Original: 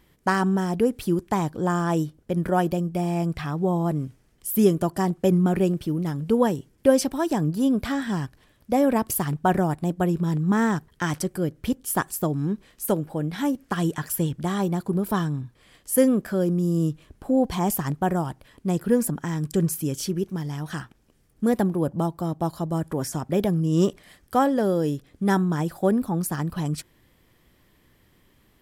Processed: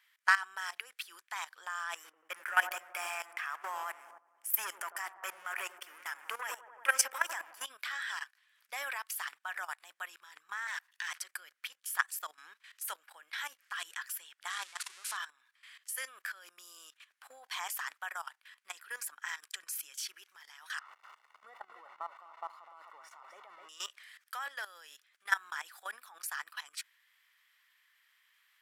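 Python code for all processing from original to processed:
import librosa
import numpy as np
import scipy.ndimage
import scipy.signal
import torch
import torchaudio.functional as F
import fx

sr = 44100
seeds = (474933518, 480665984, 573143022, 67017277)

y = fx.chain(x, sr, fx.leveller(passes=2),
    fx.peak_eq(hz=4000.0, db=-15.0, octaves=0.59),
    fx.echo_wet_lowpass(ms=91, feedback_pct=63, hz=840.0, wet_db=-7.5), at=(1.95, 7.65))
y = fx.chain(y, sr, fx.lower_of_two(delay_ms=1.1),
    fx.highpass(hz=670.0, slope=24),
    fx.over_compress(threshold_db=-36.0, ratio=-1.0), at=(10.67, 11.08))
y = fx.chain(y, sr, fx.crossing_spikes(level_db=-22.0),
    fx.lowpass(hz=9500.0, slope=24), at=(14.5, 15.17))
y = fx.chain(y, sr, fx.zero_step(step_db=-30.0),
    fx.savgol(points=65),
    fx.echo_single(ms=255, db=-8.5), at=(20.79, 23.69))
y = scipy.signal.sosfilt(scipy.signal.butter(4, 1500.0, 'highpass', fs=sr, output='sos'), y)
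y = fx.high_shelf(y, sr, hz=3000.0, db=-11.5)
y = fx.level_steps(y, sr, step_db=16)
y = y * 10.0 ** (9.5 / 20.0)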